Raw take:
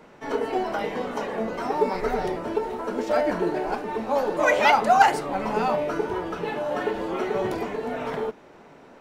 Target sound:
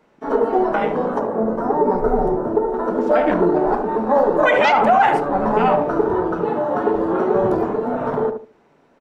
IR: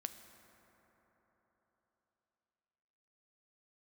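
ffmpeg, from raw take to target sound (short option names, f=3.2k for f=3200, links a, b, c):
-filter_complex "[0:a]afwtdn=0.0282,asettb=1/sr,asplit=3[a][b][c];[a]atrim=end=1.194[d];[b]atrim=start=1.19:end=2.74,asetpts=PTS-STARTPTS,afade=t=in:d=0.004:c=qsin,afade=t=out:st=1.546:d=0.004:c=qsin,equalizer=f=3.2k:t=o:w=2:g=-11[e];[c]atrim=start=2.736[f];[d][e]acrossfade=d=0.004:c1=hsin:c2=qsin[g];[g][f]acrossfade=d=0.004:c1=qsin:c2=hsin,asplit=2[h][i];[i]adelay=73,lowpass=f=940:p=1,volume=-5.5dB,asplit=2[j][k];[k]adelay=73,lowpass=f=940:p=1,volume=0.27,asplit=2[l][m];[m]adelay=73,lowpass=f=940:p=1,volume=0.27,asplit=2[n][o];[o]adelay=73,lowpass=f=940:p=1,volume=0.27[p];[j][l][n][p]amix=inputs=4:normalize=0[q];[h][q]amix=inputs=2:normalize=0,alimiter=level_in=13dB:limit=-1dB:release=50:level=0:latency=1,volume=-5dB"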